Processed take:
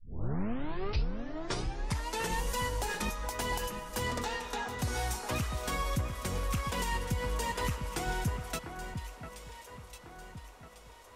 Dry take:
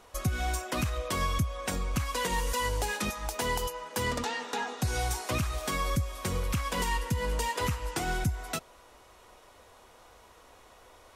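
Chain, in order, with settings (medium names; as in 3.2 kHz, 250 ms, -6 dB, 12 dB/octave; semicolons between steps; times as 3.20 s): tape start-up on the opening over 2.42 s; echo whose repeats swap between lows and highs 699 ms, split 2.1 kHz, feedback 64%, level -7.5 dB; trim -3.5 dB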